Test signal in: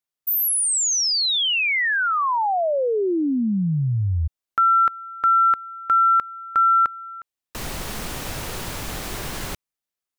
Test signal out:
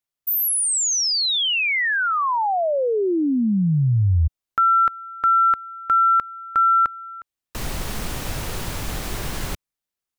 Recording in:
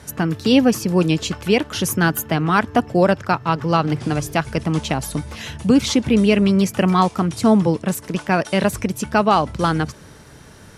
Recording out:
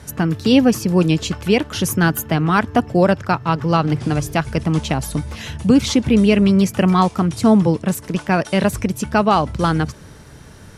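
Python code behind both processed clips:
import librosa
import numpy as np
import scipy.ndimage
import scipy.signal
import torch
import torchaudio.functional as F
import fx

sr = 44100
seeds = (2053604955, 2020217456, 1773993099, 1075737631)

y = fx.low_shelf(x, sr, hz=150.0, db=6.0)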